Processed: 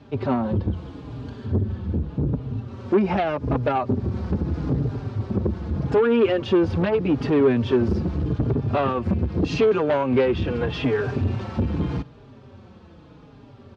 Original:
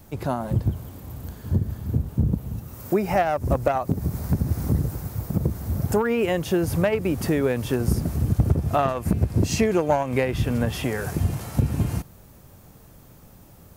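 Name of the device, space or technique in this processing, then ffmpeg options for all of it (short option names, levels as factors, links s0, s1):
barber-pole flanger into a guitar amplifier: -filter_complex "[0:a]asplit=2[s0][s1];[s1]adelay=4.5,afreqshift=-0.82[s2];[s0][s2]amix=inputs=2:normalize=1,asoftclip=type=tanh:threshold=0.075,highpass=80,equalizer=f=160:t=q:w=4:g=-4,equalizer=f=250:t=q:w=4:g=4,equalizer=f=400:t=q:w=4:g=4,equalizer=f=690:t=q:w=4:g=-4,equalizer=f=2000:t=q:w=4:g=-5,lowpass=f=3900:w=0.5412,lowpass=f=3900:w=1.3066,asettb=1/sr,asplit=3[s3][s4][s5];[s3]atrim=end=0.734[s6];[s4]atrim=start=0.73:end=1.46,asetpts=PTS-STARTPTS,afade=t=in:d=0.004:c=qsin,afade=t=out:st=0.726:d=0.004:c=qsin,highshelf=f=6800:g=9.5[s7];[s5]atrim=start=1.456[s8];[s6][s7]acrossfade=d=0.004:c1=hsin:c2=qsin[s9];[s9][s8]acrossfade=d=0.004:c1=qsin:c2=hsin,volume=2.37"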